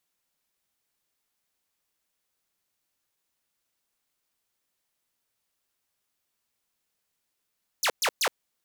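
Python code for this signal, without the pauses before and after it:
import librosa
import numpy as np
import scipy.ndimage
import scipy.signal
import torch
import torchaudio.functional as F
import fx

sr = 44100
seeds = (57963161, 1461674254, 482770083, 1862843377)

y = fx.laser_zaps(sr, level_db=-19.0, start_hz=7600.0, end_hz=390.0, length_s=0.07, wave='saw', shots=3, gap_s=0.12)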